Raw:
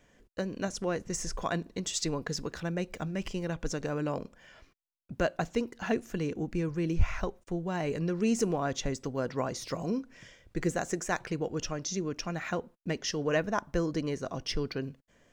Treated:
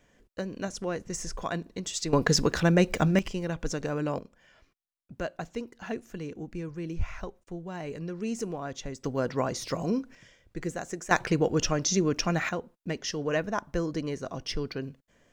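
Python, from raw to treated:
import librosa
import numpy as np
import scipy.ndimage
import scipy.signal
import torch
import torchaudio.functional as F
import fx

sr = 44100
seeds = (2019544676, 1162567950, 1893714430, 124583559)

y = fx.gain(x, sr, db=fx.steps((0.0, -0.5), (2.13, 11.5), (3.19, 2.0), (4.19, -5.0), (9.04, 3.5), (10.15, -3.5), (11.11, 8.0), (12.49, 0.0)))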